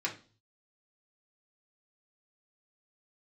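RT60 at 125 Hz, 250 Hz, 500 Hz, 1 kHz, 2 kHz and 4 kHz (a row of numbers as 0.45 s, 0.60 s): 0.80 s, 0.45 s, 0.40 s, 0.35 s, 0.35 s, 0.40 s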